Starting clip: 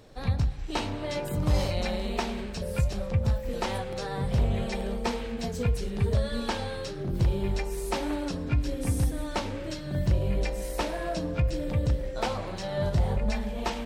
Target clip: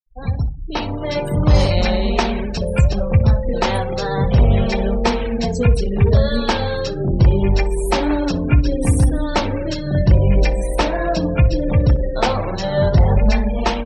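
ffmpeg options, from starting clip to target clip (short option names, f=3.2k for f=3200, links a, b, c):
-filter_complex "[0:a]dynaudnorm=f=690:g=3:m=7dB,afftfilt=real='re*gte(hypot(re,im),0.0224)':imag='im*gte(hypot(re,im),0.0224)':win_size=1024:overlap=0.75,asplit=2[a][b];[b]adelay=62,lowpass=f=1.3k:p=1,volume=-13dB,asplit=2[c][d];[d]adelay=62,lowpass=f=1.3k:p=1,volume=0.22,asplit=2[e][f];[f]adelay=62,lowpass=f=1.3k:p=1,volume=0.22[g];[a][c][e][g]amix=inputs=4:normalize=0,volume=5dB"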